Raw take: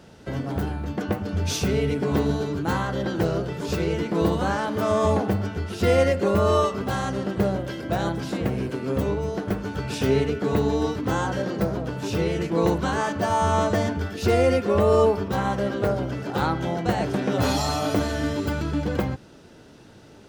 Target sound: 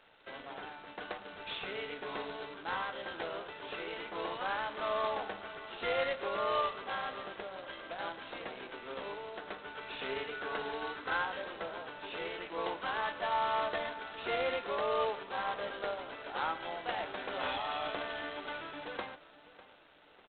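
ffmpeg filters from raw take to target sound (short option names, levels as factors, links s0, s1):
-filter_complex "[0:a]highpass=760,asplit=3[s0][s1][s2];[s0]afade=t=out:st=7.32:d=0.02[s3];[s1]acompressor=threshold=0.0224:ratio=8,afade=t=in:st=7.32:d=0.02,afade=t=out:st=7.98:d=0.02[s4];[s2]afade=t=in:st=7.98:d=0.02[s5];[s3][s4][s5]amix=inputs=3:normalize=0,asplit=3[s6][s7][s8];[s6]afade=t=out:st=10.31:d=0.02[s9];[s7]equalizer=f=1500:t=o:w=0.38:g=8.5,afade=t=in:st=10.31:d=0.02,afade=t=out:st=11.22:d=0.02[s10];[s8]afade=t=in:st=11.22:d=0.02[s11];[s9][s10][s11]amix=inputs=3:normalize=0,asplit=2[s12][s13];[s13]adelay=599,lowpass=f=2500:p=1,volume=0.141,asplit=2[s14][s15];[s15]adelay=599,lowpass=f=2500:p=1,volume=0.48,asplit=2[s16][s17];[s17]adelay=599,lowpass=f=2500:p=1,volume=0.48,asplit=2[s18][s19];[s19]adelay=599,lowpass=f=2500:p=1,volume=0.48[s20];[s12][s14][s16][s18][s20]amix=inputs=5:normalize=0,volume=0.447" -ar 8000 -c:a adpcm_g726 -b:a 16k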